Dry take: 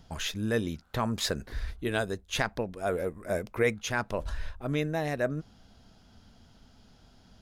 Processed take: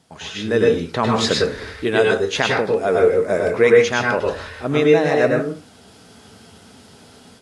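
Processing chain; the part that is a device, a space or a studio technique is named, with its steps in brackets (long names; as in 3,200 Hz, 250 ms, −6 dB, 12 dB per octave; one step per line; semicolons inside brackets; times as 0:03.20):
filmed off a television (band-pass filter 160–6,500 Hz; parametric band 440 Hz +4 dB 0.36 octaves; convolution reverb RT60 0.35 s, pre-delay 97 ms, DRR −1.5 dB; white noise bed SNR 35 dB; automatic gain control gain up to 12 dB; AAC 48 kbit/s 24,000 Hz)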